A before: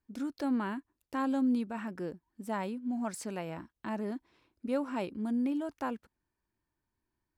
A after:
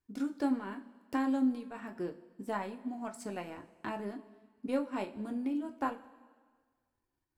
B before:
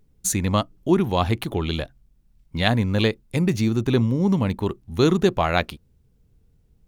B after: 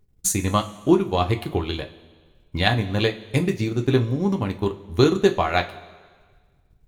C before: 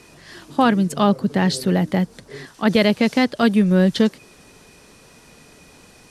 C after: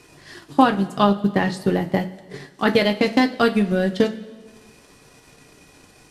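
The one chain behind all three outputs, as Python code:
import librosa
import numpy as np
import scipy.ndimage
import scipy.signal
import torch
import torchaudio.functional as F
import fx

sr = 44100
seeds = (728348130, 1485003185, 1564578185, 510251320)

y = fx.transient(x, sr, attack_db=6, sustain_db=-11)
y = fx.rev_double_slope(y, sr, seeds[0], early_s=0.22, late_s=1.6, knee_db=-18, drr_db=3.5)
y = y * 10.0 ** (-3.5 / 20.0)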